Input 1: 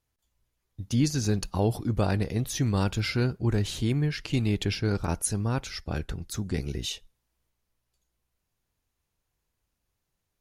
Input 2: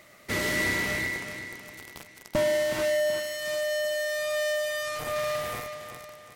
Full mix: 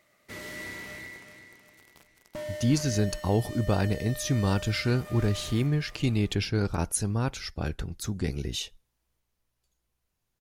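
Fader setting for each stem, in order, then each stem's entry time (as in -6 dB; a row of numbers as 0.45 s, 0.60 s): 0.0 dB, -12.5 dB; 1.70 s, 0.00 s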